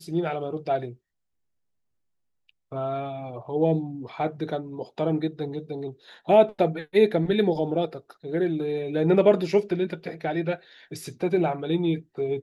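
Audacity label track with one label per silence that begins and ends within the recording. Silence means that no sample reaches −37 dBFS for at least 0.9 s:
0.930000	2.720000	silence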